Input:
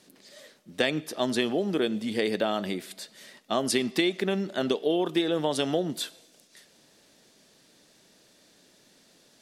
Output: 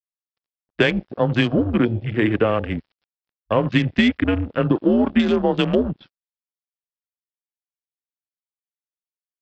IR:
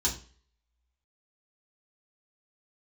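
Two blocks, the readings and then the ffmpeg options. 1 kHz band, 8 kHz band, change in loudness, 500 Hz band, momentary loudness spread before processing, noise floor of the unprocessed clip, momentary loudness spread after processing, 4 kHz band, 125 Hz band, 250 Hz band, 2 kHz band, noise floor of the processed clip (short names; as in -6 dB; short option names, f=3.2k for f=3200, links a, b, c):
+6.0 dB, under -10 dB, +8.0 dB, +6.0 dB, 9 LU, -61 dBFS, 5 LU, +1.5 dB, +15.0 dB, +9.5 dB, +8.5 dB, under -85 dBFS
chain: -af "bandreject=f=232:t=h:w=4,bandreject=f=464:t=h:w=4,bandreject=f=696:t=h:w=4,bandreject=f=928:t=h:w=4,bandreject=f=1.16k:t=h:w=4,bandreject=f=1.392k:t=h:w=4,bandreject=f=1.624k:t=h:w=4,bandreject=f=1.856k:t=h:w=4,bandreject=f=2.088k:t=h:w=4,bandreject=f=2.32k:t=h:w=4,bandreject=f=2.552k:t=h:w=4,bandreject=f=2.784k:t=h:w=4,bandreject=f=3.016k:t=h:w=4,bandreject=f=3.248k:t=h:w=4,bandreject=f=3.48k:t=h:w=4,bandreject=f=3.712k:t=h:w=4,bandreject=f=3.944k:t=h:w=4,bandreject=f=4.176k:t=h:w=4,bandreject=f=4.408k:t=h:w=4,bandreject=f=4.64k:t=h:w=4,bandreject=f=4.872k:t=h:w=4,bandreject=f=5.104k:t=h:w=4,bandreject=f=5.336k:t=h:w=4,bandreject=f=5.568k:t=h:w=4,bandreject=f=5.8k:t=h:w=4,bandreject=f=6.032k:t=h:w=4,bandreject=f=6.264k:t=h:w=4,bandreject=f=6.496k:t=h:w=4,highpass=f=200:t=q:w=0.5412,highpass=f=200:t=q:w=1.307,lowpass=f=3.3k:t=q:w=0.5176,lowpass=f=3.3k:t=q:w=0.7071,lowpass=f=3.3k:t=q:w=1.932,afreqshift=-110,aresample=11025,aeval=exprs='sgn(val(0))*max(abs(val(0))-0.0075,0)':c=same,aresample=44100,apsyclip=16dB,afwtdn=0.0631,volume=-6dB"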